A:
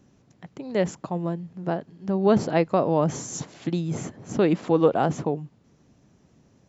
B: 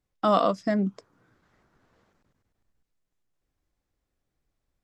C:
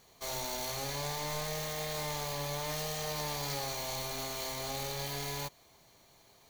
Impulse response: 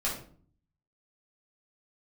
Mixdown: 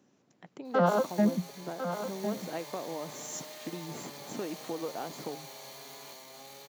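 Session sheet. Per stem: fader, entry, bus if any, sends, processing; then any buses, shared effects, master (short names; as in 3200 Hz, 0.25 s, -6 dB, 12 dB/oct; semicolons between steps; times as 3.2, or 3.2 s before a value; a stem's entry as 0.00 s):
-5.0 dB, 0.00 s, no send, no echo send, compressor, threshold -28 dBFS, peak gain reduction 14 dB
+1.0 dB, 0.50 s, no send, echo send -9.5 dB, arpeggiated vocoder minor triad, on F3, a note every 96 ms
-2.5 dB, 0.65 s, no send, echo send -8.5 dB, auto duck -10 dB, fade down 1.75 s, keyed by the first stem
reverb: off
echo: echo 1.052 s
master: HPF 240 Hz 12 dB/oct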